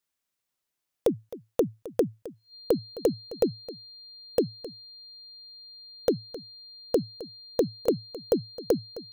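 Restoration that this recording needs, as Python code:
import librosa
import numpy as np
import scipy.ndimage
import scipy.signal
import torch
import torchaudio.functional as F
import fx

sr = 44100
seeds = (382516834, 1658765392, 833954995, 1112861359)

y = fx.notch(x, sr, hz=4200.0, q=30.0)
y = fx.fix_echo_inverse(y, sr, delay_ms=263, level_db=-16.5)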